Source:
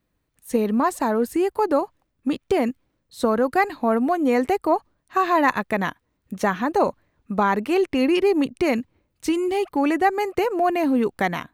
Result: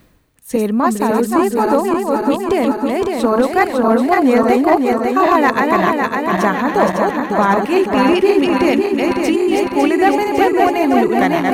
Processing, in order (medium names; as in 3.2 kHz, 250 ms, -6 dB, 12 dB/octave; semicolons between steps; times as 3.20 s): backward echo that repeats 277 ms, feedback 77%, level -3 dB; reverse; upward compressor, threshold -18 dBFS; reverse; overload inside the chain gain 8 dB; trim +4.5 dB